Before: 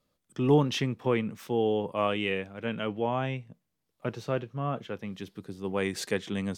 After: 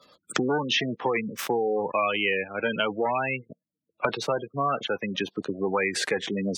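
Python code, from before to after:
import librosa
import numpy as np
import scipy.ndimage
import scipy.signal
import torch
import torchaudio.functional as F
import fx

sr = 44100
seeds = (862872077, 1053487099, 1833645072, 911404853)

y = fx.leveller(x, sr, passes=3)
y = fx.spec_gate(y, sr, threshold_db=-20, keep='strong')
y = fx.highpass(y, sr, hz=1200.0, slope=6)
y = fx.band_squash(y, sr, depth_pct=100)
y = y * 10.0 ** (3.0 / 20.0)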